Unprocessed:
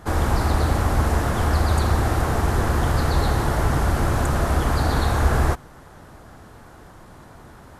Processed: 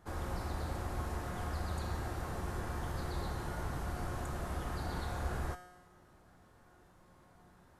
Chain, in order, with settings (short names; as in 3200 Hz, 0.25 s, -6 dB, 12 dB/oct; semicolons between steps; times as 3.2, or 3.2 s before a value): resonator 180 Hz, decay 1.1 s, mix 80%; gain -5.5 dB